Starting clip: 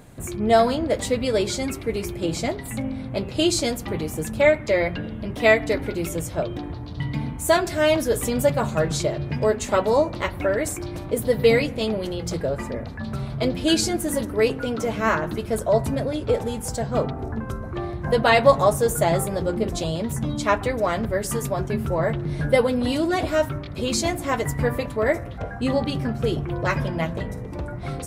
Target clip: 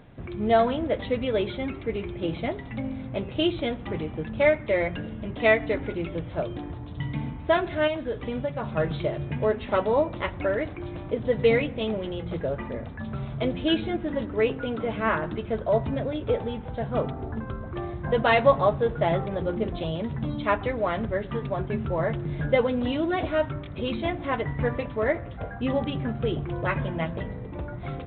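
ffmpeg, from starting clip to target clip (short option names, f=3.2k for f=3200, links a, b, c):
-filter_complex "[0:a]asettb=1/sr,asplit=3[a][b][c];[a]atrim=end=7.874[d];[b]atrim=start=7.87:end=8.76,asetpts=PTS-STARTPTS,afade=t=in:d=0.004:c=qsin,afade=t=out:st=0.886:d=0.004:c=qsin,acompressor=threshold=-23dB:ratio=4[e];[c]atrim=start=8.756[f];[d][e]acrossfade=d=0.004:c1=hsin:c2=qsin[g];[g][f]acrossfade=d=0.004:c1=qsin:c2=hsin,volume=-3.5dB" -ar 8000 -c:a pcm_alaw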